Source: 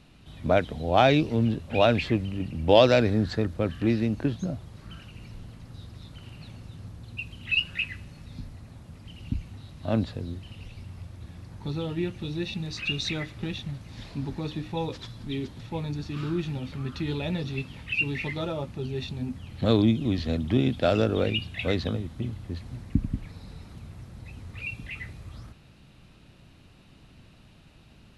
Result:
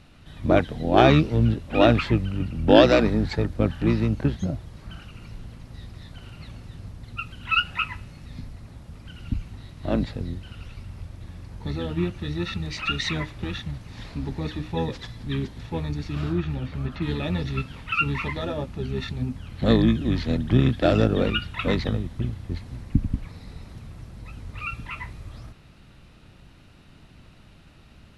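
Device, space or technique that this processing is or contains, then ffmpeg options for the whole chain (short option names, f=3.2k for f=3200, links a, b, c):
octave pedal: -filter_complex "[0:a]asplit=2[a][b];[b]asetrate=22050,aresample=44100,atempo=2,volume=-3dB[c];[a][c]amix=inputs=2:normalize=0,asettb=1/sr,asplit=3[d][e][f];[d]atrim=end=16.324[g];[e]atrim=start=16.32:end=17.02,asetpts=PTS-STARTPTS,afade=t=in:d=0.004:c=qsin,afade=t=out:st=0.696:d=0.004:c=qsin,acrossover=split=3300[h][i];[i]acompressor=threshold=-58dB:ratio=4:attack=1:release=60[j];[h][j]amix=inputs=2:normalize=0[k];[f]atrim=start=17.016[l];[g][k]acrossfade=d=0.004:c1=hsin:c2=qsin[m];[m][l]acrossfade=d=0.004:c1=qsin:c2=hsin,volume=1.5dB"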